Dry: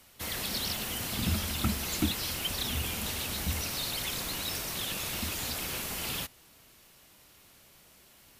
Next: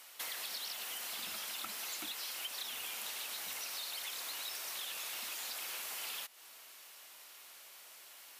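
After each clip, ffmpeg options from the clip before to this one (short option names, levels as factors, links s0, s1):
-af "highpass=730,acompressor=threshold=0.00631:ratio=6,volume=1.58"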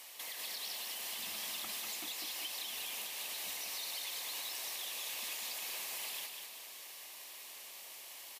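-af "equalizer=f=1400:t=o:w=0.24:g=-13.5,alimiter=level_in=3.98:limit=0.0631:level=0:latency=1:release=345,volume=0.251,aecho=1:1:197|394|591|788|985|1182:0.596|0.286|0.137|0.0659|0.0316|0.0152,volume=1.5"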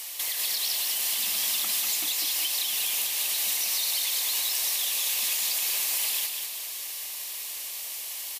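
-af "highshelf=f=2900:g=11,volume=1.88"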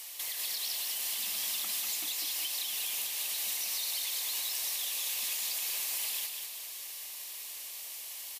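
-af "highpass=65,volume=0.447"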